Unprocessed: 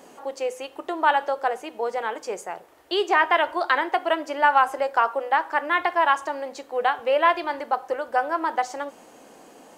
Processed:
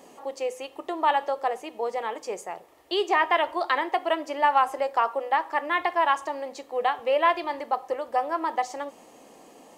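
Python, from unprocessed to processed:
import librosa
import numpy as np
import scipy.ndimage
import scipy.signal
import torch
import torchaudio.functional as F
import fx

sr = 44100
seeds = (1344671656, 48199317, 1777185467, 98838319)

y = fx.notch(x, sr, hz=1500.0, q=5.2)
y = y * 10.0 ** (-2.0 / 20.0)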